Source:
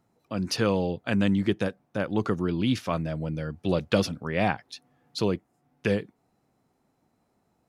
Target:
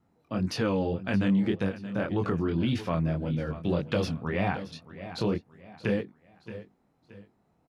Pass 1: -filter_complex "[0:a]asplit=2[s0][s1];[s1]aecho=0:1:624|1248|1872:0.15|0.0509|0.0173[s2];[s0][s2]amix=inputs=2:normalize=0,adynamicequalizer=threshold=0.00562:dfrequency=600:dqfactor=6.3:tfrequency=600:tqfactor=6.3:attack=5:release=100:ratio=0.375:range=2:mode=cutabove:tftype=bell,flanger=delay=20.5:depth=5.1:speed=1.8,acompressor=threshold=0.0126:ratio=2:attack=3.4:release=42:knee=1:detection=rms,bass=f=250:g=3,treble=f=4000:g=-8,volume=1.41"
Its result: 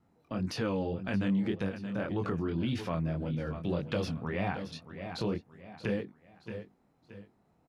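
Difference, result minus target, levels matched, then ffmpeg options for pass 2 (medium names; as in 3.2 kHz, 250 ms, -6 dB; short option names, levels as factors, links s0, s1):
compression: peak gain reduction +4.5 dB
-filter_complex "[0:a]asplit=2[s0][s1];[s1]aecho=0:1:624|1248|1872:0.15|0.0509|0.0173[s2];[s0][s2]amix=inputs=2:normalize=0,adynamicequalizer=threshold=0.00562:dfrequency=600:dqfactor=6.3:tfrequency=600:tqfactor=6.3:attack=5:release=100:ratio=0.375:range=2:mode=cutabove:tftype=bell,flanger=delay=20.5:depth=5.1:speed=1.8,acompressor=threshold=0.0376:ratio=2:attack=3.4:release=42:knee=1:detection=rms,bass=f=250:g=3,treble=f=4000:g=-8,volume=1.41"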